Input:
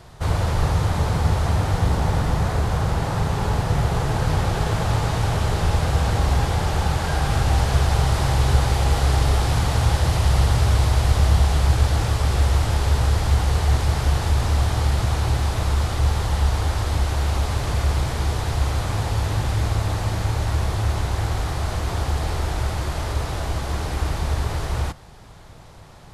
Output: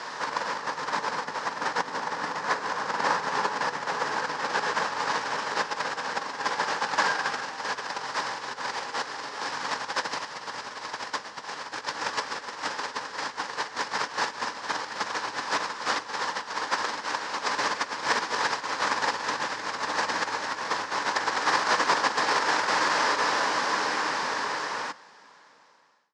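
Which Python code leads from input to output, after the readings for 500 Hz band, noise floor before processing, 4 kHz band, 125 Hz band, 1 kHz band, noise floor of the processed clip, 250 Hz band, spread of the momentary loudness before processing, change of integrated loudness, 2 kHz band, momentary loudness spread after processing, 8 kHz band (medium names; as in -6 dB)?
-5.0 dB, -42 dBFS, -0.5 dB, -34.0 dB, +1.0 dB, -45 dBFS, -11.5 dB, 6 LU, -6.5 dB, +4.0 dB, 9 LU, -3.5 dB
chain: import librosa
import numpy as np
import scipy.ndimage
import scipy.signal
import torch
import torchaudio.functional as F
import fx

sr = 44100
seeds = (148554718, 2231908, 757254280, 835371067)

y = fx.fade_out_tail(x, sr, length_s=5.61)
y = fx.over_compress(y, sr, threshold_db=-28.0, ratio=-1.0)
y = fx.cabinet(y, sr, low_hz=290.0, low_slope=24, high_hz=6800.0, hz=(360.0, 690.0, 1000.0, 1700.0, 3500.0, 5200.0), db=(-10, -8, 7, 8, -3, 5))
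y = F.gain(torch.from_numpy(y), 4.5).numpy()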